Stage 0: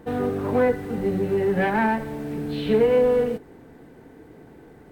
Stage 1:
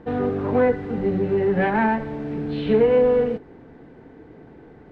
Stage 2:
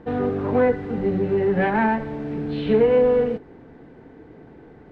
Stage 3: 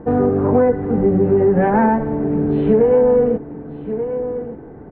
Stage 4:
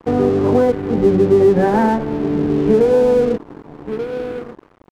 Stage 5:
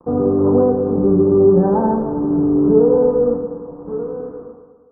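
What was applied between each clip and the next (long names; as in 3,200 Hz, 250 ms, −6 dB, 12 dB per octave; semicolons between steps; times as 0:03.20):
high-frequency loss of the air 180 metres; level +2 dB
no processing that can be heard
low-pass filter 1,100 Hz 12 dB per octave; single-tap delay 1,184 ms −15 dB; downward compressor, threshold −19 dBFS, peak gain reduction 6.5 dB; level +9 dB
parametric band 350 Hz +7.5 dB 0.33 octaves; dead-zone distortion −31 dBFS
fade-out on the ending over 1.00 s; elliptic low-pass filter 1,200 Hz, stop band 80 dB; on a send at −2 dB: convolution reverb RT60 1.5 s, pre-delay 3 ms; on the sum: level −3.5 dB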